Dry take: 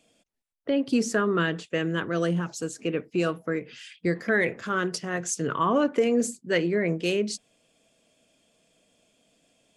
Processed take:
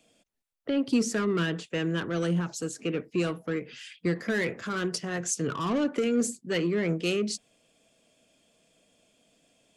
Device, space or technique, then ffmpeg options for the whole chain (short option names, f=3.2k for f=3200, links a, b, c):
one-band saturation: -filter_complex "[0:a]acrossover=split=360|2400[a][b][c];[b]asoftclip=type=tanh:threshold=-31.5dB[d];[a][d][c]amix=inputs=3:normalize=0"